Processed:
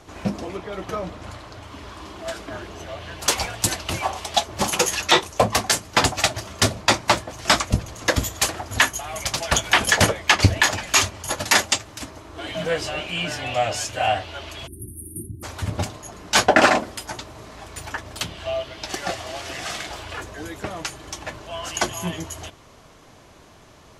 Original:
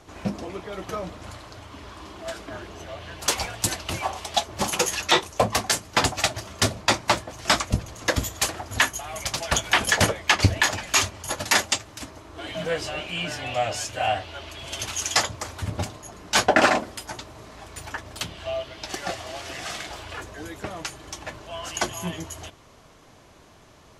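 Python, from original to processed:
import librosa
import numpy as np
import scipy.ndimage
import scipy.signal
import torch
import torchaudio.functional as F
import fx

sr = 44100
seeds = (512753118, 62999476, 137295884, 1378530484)

y = fx.high_shelf(x, sr, hz=5100.0, db=-5.5, at=(0.57, 1.63))
y = fx.spec_erase(y, sr, start_s=14.67, length_s=0.76, low_hz=390.0, high_hz=8700.0)
y = y * 10.0 ** (3.0 / 20.0)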